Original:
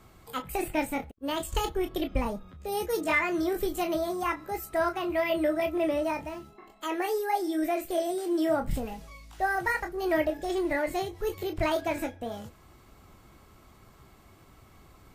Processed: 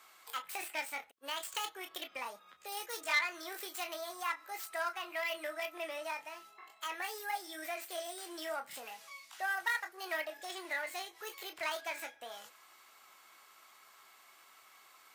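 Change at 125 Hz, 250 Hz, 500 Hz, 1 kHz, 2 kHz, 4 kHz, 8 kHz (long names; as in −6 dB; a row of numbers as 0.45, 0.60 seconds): below −40 dB, −24.0 dB, −15.5 dB, −9.0 dB, −4.0 dB, −1.5 dB, −2.0 dB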